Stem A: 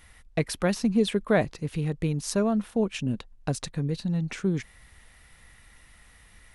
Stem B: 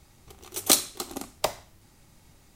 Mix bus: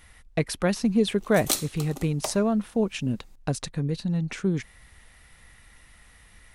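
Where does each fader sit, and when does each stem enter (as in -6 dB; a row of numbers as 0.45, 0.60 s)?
+1.0, -5.5 dB; 0.00, 0.80 s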